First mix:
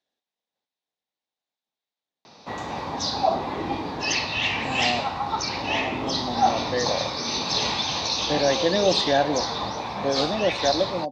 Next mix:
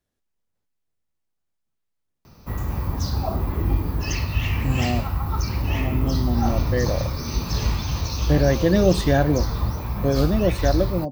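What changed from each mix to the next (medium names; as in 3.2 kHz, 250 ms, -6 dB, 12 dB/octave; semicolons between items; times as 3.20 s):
background -6.0 dB; master: remove cabinet simulation 350–6300 Hz, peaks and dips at 370 Hz -4 dB, 780 Hz +5 dB, 1.3 kHz -6 dB, 3.7 kHz +9 dB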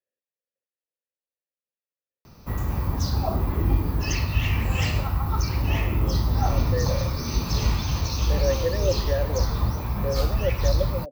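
speech: add vowel filter e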